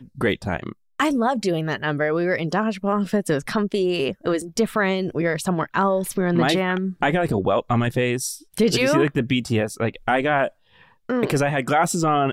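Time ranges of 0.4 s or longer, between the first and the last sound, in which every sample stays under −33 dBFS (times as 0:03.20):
0:10.48–0:11.09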